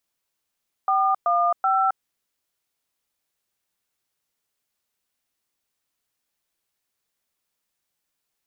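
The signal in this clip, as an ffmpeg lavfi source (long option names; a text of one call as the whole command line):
ffmpeg -f lavfi -i "aevalsrc='0.1*clip(min(mod(t,0.38),0.267-mod(t,0.38))/0.002,0,1)*(eq(floor(t/0.38),0)*(sin(2*PI*770*mod(t,0.38))+sin(2*PI*1209*mod(t,0.38)))+eq(floor(t/0.38),1)*(sin(2*PI*697*mod(t,0.38))+sin(2*PI*1209*mod(t,0.38)))+eq(floor(t/0.38),2)*(sin(2*PI*770*mod(t,0.38))+sin(2*PI*1336*mod(t,0.38))))':duration=1.14:sample_rate=44100" out.wav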